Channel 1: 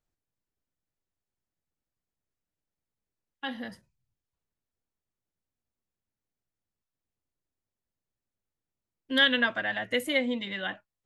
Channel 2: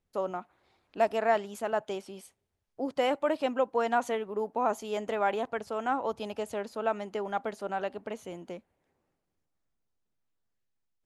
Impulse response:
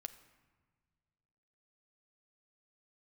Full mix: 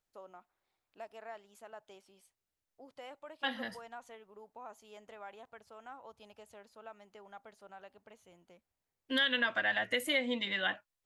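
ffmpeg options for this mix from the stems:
-filter_complex "[0:a]alimiter=limit=-20.5dB:level=0:latency=1:release=172,volume=1.5dB[a];[1:a]asubboost=boost=4:cutoff=130,acompressor=threshold=-33dB:ratio=1.5,volume=-14.5dB[b];[a][b]amix=inputs=2:normalize=0,lowshelf=f=400:g=-9"

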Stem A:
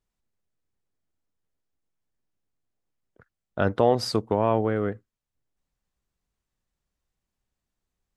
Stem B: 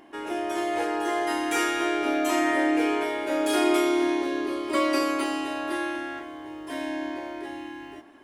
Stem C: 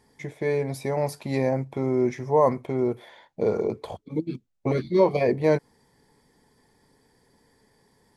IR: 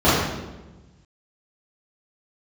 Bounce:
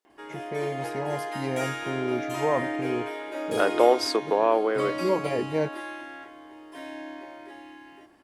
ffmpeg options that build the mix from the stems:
-filter_complex "[0:a]highpass=f=330:w=0.5412,highpass=f=330:w=1.3066,volume=2dB,asplit=2[a][b];[1:a]bass=f=250:g=-6,treble=f=4k:g=-3,bandreject=f=50:t=h:w=6,bandreject=f=100:t=h:w=6,bandreject=f=150:t=h:w=6,bandreject=f=200:t=h:w=6,bandreject=f=250:t=h:w=6,bandreject=f=300:t=h:w=6,bandreject=f=350:t=h:w=6,adelay=50,volume=-6dB[c];[2:a]adelay=100,volume=-6dB[d];[b]apad=whole_len=364417[e];[d][e]sidechaincompress=threshold=-29dB:ratio=8:attack=16:release=260[f];[a][c][f]amix=inputs=3:normalize=0"

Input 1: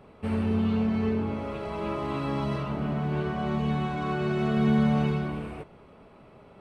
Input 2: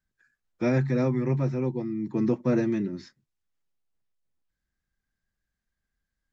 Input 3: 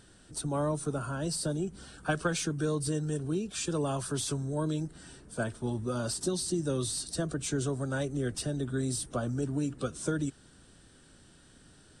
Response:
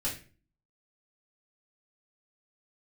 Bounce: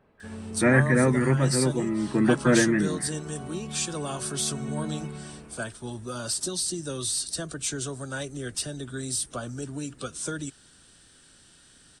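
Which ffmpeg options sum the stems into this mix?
-filter_complex "[0:a]volume=-11.5dB[a];[1:a]lowpass=f=1.8k:t=q:w=5.5,volume=3dB[b];[2:a]tiltshelf=f=1.2k:g=-5.5,adelay=200,volume=1.5dB[c];[a][b][c]amix=inputs=3:normalize=0"

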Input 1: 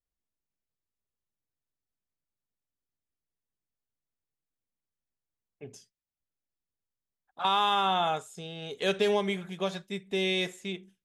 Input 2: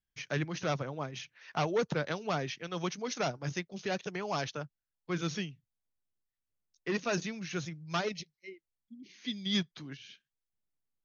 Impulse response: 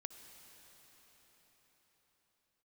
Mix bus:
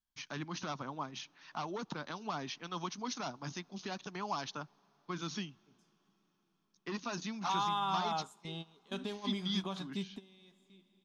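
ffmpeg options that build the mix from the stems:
-filter_complex "[0:a]lowshelf=f=280:g=9.5,alimiter=level_in=1dB:limit=-24dB:level=0:latency=1:release=355,volume=-1dB,adelay=50,volume=-5dB,asplit=2[a][b];[b]volume=-20.5dB[c];[1:a]alimiter=level_in=2dB:limit=-24dB:level=0:latency=1:release=117,volume=-2dB,volume=-4dB,asplit=3[d][e][f];[e]volume=-16.5dB[g];[f]apad=whole_len=489493[h];[a][h]sidechaingate=range=-33dB:threshold=-59dB:ratio=16:detection=peak[i];[2:a]atrim=start_sample=2205[j];[c][g]amix=inputs=2:normalize=0[k];[k][j]afir=irnorm=-1:irlink=0[l];[i][d][l]amix=inputs=3:normalize=0,equalizer=f=125:t=o:w=1:g=-7,equalizer=f=250:t=o:w=1:g=7,equalizer=f=500:t=o:w=1:g=-10,equalizer=f=1k:t=o:w=1:g=11,equalizer=f=2k:t=o:w=1:g=-6,equalizer=f=4k:t=o:w=1:g=5"

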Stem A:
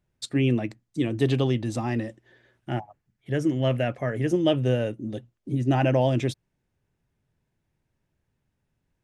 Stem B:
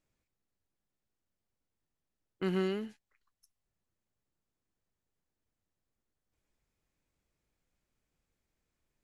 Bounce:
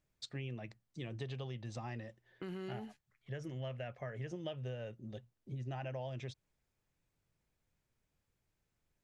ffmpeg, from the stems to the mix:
-filter_complex "[0:a]lowpass=f=6.6k:w=0.5412,lowpass=f=6.6k:w=1.3066,equalizer=f=290:t=o:w=0.6:g=-14.5,volume=-10dB[a];[1:a]alimiter=level_in=7.5dB:limit=-24dB:level=0:latency=1,volume=-7.5dB,volume=-2dB[b];[a][b]amix=inputs=2:normalize=0,acompressor=threshold=-39dB:ratio=6"

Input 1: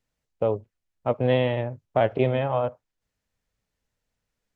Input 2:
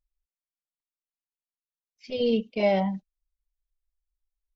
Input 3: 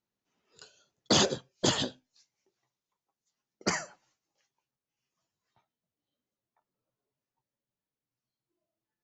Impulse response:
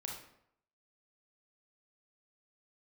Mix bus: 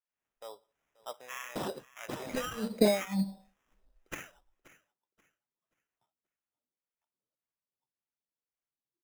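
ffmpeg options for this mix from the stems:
-filter_complex "[0:a]highpass=1.3k,acontrast=50,volume=-11.5dB,asplit=4[a][b][c][d];[b]volume=-18dB[e];[c]volume=-20dB[f];[1:a]dynaudnorm=f=100:g=11:m=13dB,alimiter=limit=-11dB:level=0:latency=1,acompressor=threshold=-21dB:ratio=6,adelay=250,volume=2.5dB,asplit=2[g][h];[h]volume=-15.5dB[i];[2:a]lowshelf=f=170:g=-9,adelay=450,volume=-7dB,asplit=2[j][k];[k]volume=-18dB[l];[d]apad=whole_len=211999[m];[g][m]sidechaincompress=threshold=-42dB:ratio=8:attack=16:release=201[n];[3:a]atrim=start_sample=2205[o];[e][i]amix=inputs=2:normalize=0[p];[p][o]afir=irnorm=-1:irlink=0[q];[f][l]amix=inputs=2:normalize=0,aecho=0:1:531|1062|1593|2124:1|0.27|0.0729|0.0197[r];[a][n][j][q][r]amix=inputs=5:normalize=0,acrossover=split=1700[s][t];[s]aeval=exprs='val(0)*(1-1/2+1/2*cos(2*PI*1.8*n/s))':c=same[u];[t]aeval=exprs='val(0)*(1-1/2-1/2*cos(2*PI*1.8*n/s))':c=same[v];[u][v]amix=inputs=2:normalize=0,acrusher=samples=10:mix=1:aa=0.000001"

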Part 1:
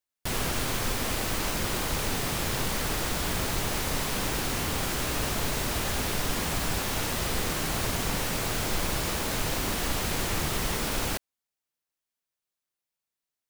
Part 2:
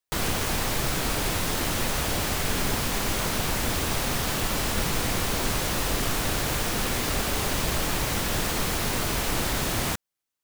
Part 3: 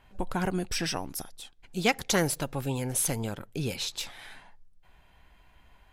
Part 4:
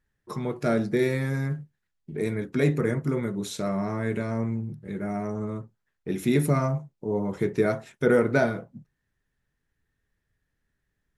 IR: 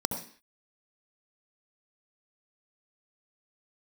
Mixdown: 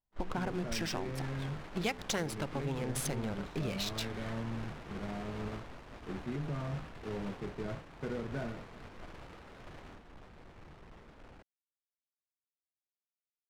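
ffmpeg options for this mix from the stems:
-filter_complex "[0:a]volume=29dB,asoftclip=hard,volume=-29dB,adelay=250,volume=-7.5dB[a];[1:a]highpass=f=370:p=1,volume=-14dB[b];[2:a]bandreject=f=62.41:t=h:w=4,bandreject=f=124.82:t=h:w=4,bandreject=f=187.23:t=h:w=4,bandreject=f=249.64:t=h:w=4,bandreject=f=312.05:t=h:w=4,bandreject=f=374.46:t=h:w=4,bandreject=f=436.87:t=h:w=4,volume=2dB[c];[3:a]volume=-6dB[d];[a][d]amix=inputs=2:normalize=0,acrossover=split=220[e][f];[f]acompressor=threshold=-36dB:ratio=2.5[g];[e][g]amix=inputs=2:normalize=0,alimiter=level_in=2dB:limit=-24dB:level=0:latency=1:release=36,volume=-2dB,volume=0dB[h];[b][c][h]amix=inputs=3:normalize=0,adynamicsmooth=sensitivity=7.5:basefreq=1.1k,agate=range=-33dB:threshold=-32dB:ratio=3:detection=peak,acompressor=threshold=-34dB:ratio=3"

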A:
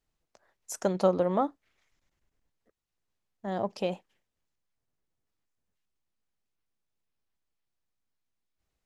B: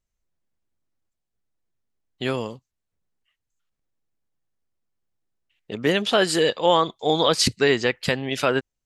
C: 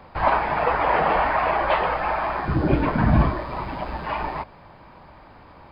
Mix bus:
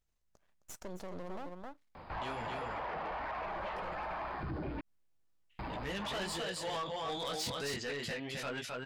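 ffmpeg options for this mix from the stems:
-filter_complex "[0:a]aeval=exprs='max(val(0),0)':c=same,volume=-3.5dB,asplit=2[a][b];[b]volume=-12.5dB[c];[1:a]equalizer=f=360:t=o:w=1:g=-6.5,flanger=delay=15.5:depth=6.8:speed=0.34,volume=-1dB,asplit=2[d][e];[e]volume=-4dB[f];[2:a]adelay=1950,volume=-4dB,asplit=3[g][h][i];[g]atrim=end=4.81,asetpts=PTS-STARTPTS,afade=t=out:st=4.806:d=0.004:c=hsin[j];[h]atrim=start=4.81:end=5.59,asetpts=PTS-STARTPTS,volume=0[k];[i]atrim=start=5.59,asetpts=PTS-STARTPTS,afade=t=in:d=0.004:c=hsin[l];[j][k][l]concat=n=3:v=0:a=1[m];[a][m]amix=inputs=2:normalize=0,acompressor=threshold=-26dB:ratio=6,volume=0dB[n];[c][f]amix=inputs=2:normalize=0,aecho=0:1:264:1[o];[d][n][o]amix=inputs=3:normalize=0,asoftclip=type=tanh:threshold=-24dB,alimiter=level_in=9.5dB:limit=-24dB:level=0:latency=1:release=84,volume=-9.5dB"

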